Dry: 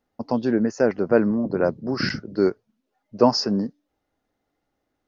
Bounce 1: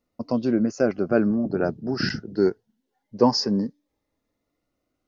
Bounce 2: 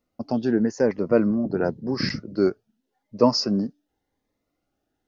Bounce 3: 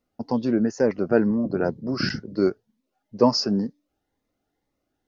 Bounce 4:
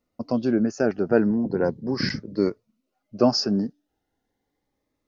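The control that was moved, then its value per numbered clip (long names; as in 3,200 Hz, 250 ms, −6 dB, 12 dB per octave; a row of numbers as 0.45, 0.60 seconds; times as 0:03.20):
phaser whose notches keep moving one way, speed: 0.22, 0.9, 2.1, 0.38 Hertz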